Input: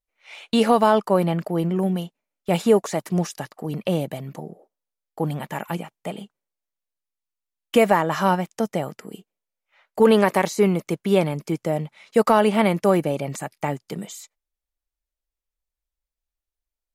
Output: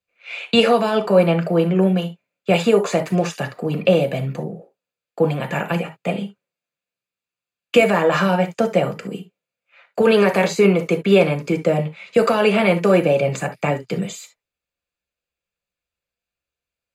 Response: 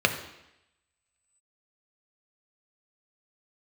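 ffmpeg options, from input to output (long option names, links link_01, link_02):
-filter_complex "[0:a]acrossover=split=280|3600[link_01][link_02][link_03];[link_01]acompressor=threshold=-33dB:ratio=6[link_04];[link_02]alimiter=limit=-15dB:level=0:latency=1[link_05];[link_04][link_05][link_03]amix=inputs=3:normalize=0[link_06];[1:a]atrim=start_sample=2205,atrim=end_sample=3528[link_07];[link_06][link_07]afir=irnorm=-1:irlink=0,volume=-5.5dB"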